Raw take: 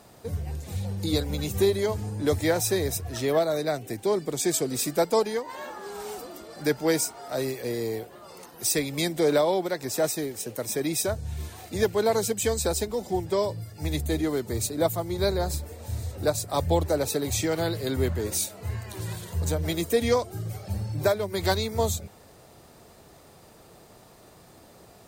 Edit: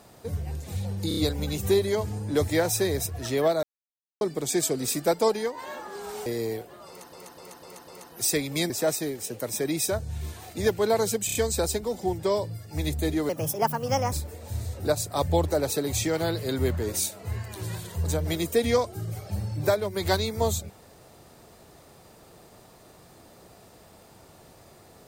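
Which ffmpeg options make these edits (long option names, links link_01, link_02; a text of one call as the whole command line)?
ffmpeg -i in.wav -filter_complex "[0:a]asplit=17[link_01][link_02][link_03][link_04][link_05][link_06][link_07][link_08][link_09][link_10][link_11][link_12][link_13][link_14][link_15][link_16][link_17];[link_01]atrim=end=1.112[link_18];[link_02]atrim=start=1.078:end=1.112[link_19];[link_03]atrim=start=1.078:end=1.112[link_20];[link_04]atrim=start=1.078:end=3.54,asetpts=PTS-STARTPTS,afade=type=out:start_time=2.458:duration=0.004:curve=hsin[link_21];[link_05]atrim=start=3.54:end=4.12,asetpts=PTS-STARTPTS,volume=0[link_22];[link_06]atrim=start=4.12:end=6.172,asetpts=PTS-STARTPTS,afade=type=in:duration=0.004:curve=hsin[link_23];[link_07]atrim=start=7.678:end=8.552[link_24];[link_08]atrim=start=8.298:end=8.552[link_25];[link_09]atrim=start=8.298:end=8.552[link_26];[link_10]atrim=start=8.298:end=8.552[link_27];[link_11]atrim=start=8.298:end=9.122[link_28];[link_12]atrim=start=9.858:end=12.452[link_29];[link_13]atrim=start=12.418:end=12.452[link_30];[link_14]atrim=start=12.418:end=12.452[link_31];[link_15]atrim=start=12.418:end=14.364[link_32];[link_16]atrim=start=14.36:end=15.5,asetpts=PTS-STARTPTS,asetrate=60417,aresample=44100,atrim=end_sample=36696,asetpts=PTS-STARTPTS[link_33];[link_17]atrim=start=15.496[link_34];[link_18][link_19]acrossfade=duration=0.004:curve1=hsin:curve2=hsin[link_35];[link_35][link_20]acrossfade=duration=0.004:curve1=hsin:curve2=hsin[link_36];[link_21][link_22][link_23]concat=n=3:v=0:a=1[link_37];[link_36][link_37]acrossfade=duration=0.004:curve1=hsin:curve2=hsin[link_38];[link_38][link_24]acrossfade=duration=0.004:curve1=hsin:curve2=hsin[link_39];[link_39][link_25]acrossfade=duration=0.004:curve1=hsin:curve2=hsin[link_40];[link_40][link_26]acrossfade=duration=0.004:curve1=hsin:curve2=hsin[link_41];[link_41][link_27]acrossfade=duration=0.004:curve1=hsin:curve2=hsin[link_42];[link_42][link_28]acrossfade=duration=0.004:curve1=hsin:curve2=hsin[link_43];[link_43][link_29]acrossfade=duration=0.004:curve1=hsin:curve2=hsin[link_44];[link_44][link_30]acrossfade=duration=0.004:curve1=hsin:curve2=hsin[link_45];[link_45][link_31]acrossfade=duration=0.004:curve1=hsin:curve2=hsin[link_46];[link_46][link_32]acrossfade=duration=0.004:curve1=hsin:curve2=hsin[link_47];[link_47][link_33]acrossfade=duration=0.004:curve1=hsin:curve2=hsin[link_48];[link_48][link_34]acrossfade=duration=0.004:curve1=hsin:curve2=hsin" out.wav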